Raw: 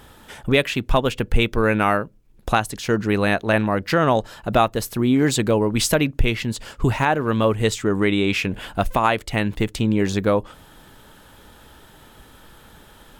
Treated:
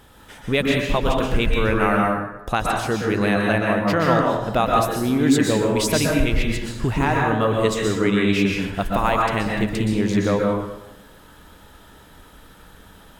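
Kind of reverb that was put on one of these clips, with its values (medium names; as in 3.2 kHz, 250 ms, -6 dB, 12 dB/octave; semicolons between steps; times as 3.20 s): plate-style reverb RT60 1 s, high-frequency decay 0.6×, pre-delay 110 ms, DRR -1.5 dB; trim -3.5 dB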